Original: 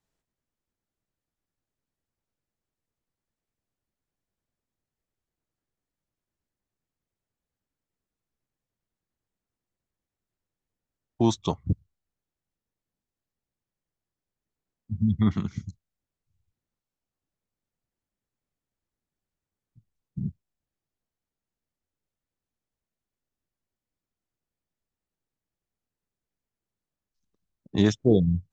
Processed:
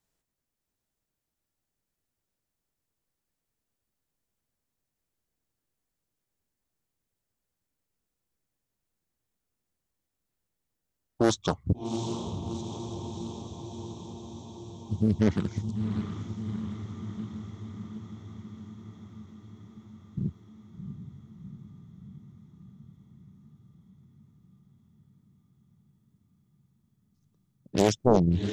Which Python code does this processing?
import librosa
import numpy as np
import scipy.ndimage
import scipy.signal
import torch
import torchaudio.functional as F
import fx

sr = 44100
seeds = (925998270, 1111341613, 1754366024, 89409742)

y = fx.high_shelf(x, sr, hz=6000.0, db=7.0)
y = fx.echo_diffused(y, sr, ms=731, feedback_pct=70, wet_db=-7.0)
y = fx.doppler_dist(y, sr, depth_ms=0.85)